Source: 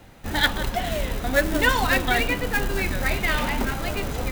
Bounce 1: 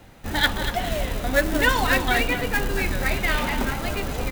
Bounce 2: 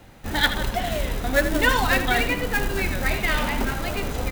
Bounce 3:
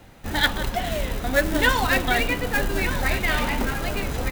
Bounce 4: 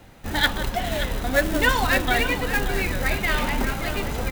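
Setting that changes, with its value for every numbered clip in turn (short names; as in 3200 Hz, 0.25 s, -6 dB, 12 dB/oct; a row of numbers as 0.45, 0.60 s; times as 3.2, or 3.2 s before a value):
echo, time: 238, 79, 1209, 577 ms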